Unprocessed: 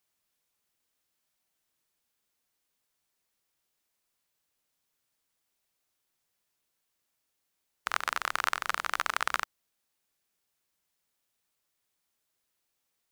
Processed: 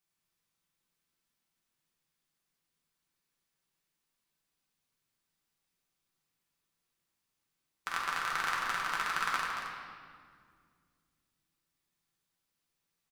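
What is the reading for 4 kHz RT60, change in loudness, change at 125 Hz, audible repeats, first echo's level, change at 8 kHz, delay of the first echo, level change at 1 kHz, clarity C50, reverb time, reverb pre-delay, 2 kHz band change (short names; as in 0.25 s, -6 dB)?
1.5 s, -2.0 dB, n/a, 1, -8.5 dB, -3.5 dB, 0.228 s, -1.5 dB, 0.0 dB, 2.1 s, 5 ms, -1.5 dB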